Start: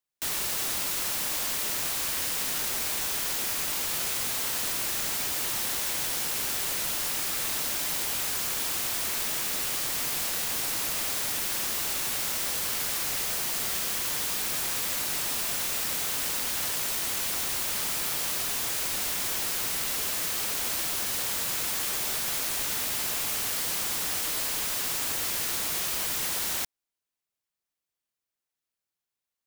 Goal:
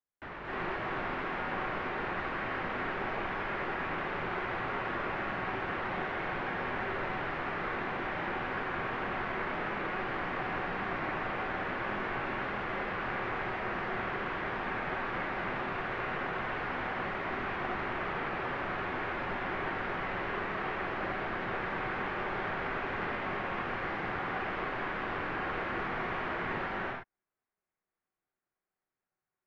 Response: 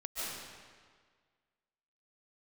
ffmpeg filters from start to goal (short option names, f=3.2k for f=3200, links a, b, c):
-filter_complex "[0:a]lowpass=f=1.9k:w=0.5412,lowpass=f=1.9k:w=1.3066[a];[1:a]atrim=start_sample=2205,afade=t=out:st=0.27:d=0.01,atrim=end_sample=12348,asetrate=25578,aresample=44100[b];[a][b]afir=irnorm=-1:irlink=0"